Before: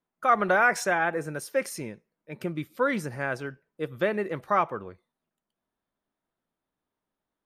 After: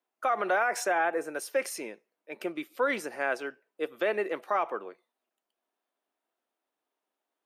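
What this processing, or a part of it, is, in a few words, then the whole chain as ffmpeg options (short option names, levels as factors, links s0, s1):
laptop speaker: -filter_complex "[0:a]asettb=1/sr,asplit=3[s0][s1][s2];[s0]atrim=end=0.624[s3];[s1]atrim=start=0.62:end=1.35,asetpts=PTS-STARTPTS,afade=t=in:d=0.004:c=qsin,afade=t=out:st=0.726:d=0.004:c=qsin,equalizer=f=3400:t=o:w=1.9:g=-4[s4];[s2]atrim=start=1.346[s5];[s3][s4]acrossfade=d=0.004:c1=hsin:c2=qsin[s6];[s6][s5]acrossfade=d=0.004:c1=qsin:c2=hsin,highpass=f=300:w=0.5412,highpass=f=300:w=1.3066,equalizer=f=720:t=o:w=0.3:g=4.5,equalizer=f=2700:t=o:w=0.48:g=4,alimiter=limit=0.126:level=0:latency=1:release=51"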